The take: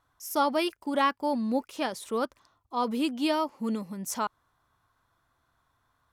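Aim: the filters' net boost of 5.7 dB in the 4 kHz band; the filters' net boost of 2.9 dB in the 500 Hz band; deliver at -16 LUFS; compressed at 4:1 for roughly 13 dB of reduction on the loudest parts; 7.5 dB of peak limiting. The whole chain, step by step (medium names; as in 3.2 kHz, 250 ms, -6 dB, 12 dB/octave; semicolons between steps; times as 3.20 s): peaking EQ 500 Hz +3.5 dB; peaking EQ 4 kHz +7.5 dB; compression 4:1, threshold -35 dBFS; trim +24.5 dB; peak limiter -6.5 dBFS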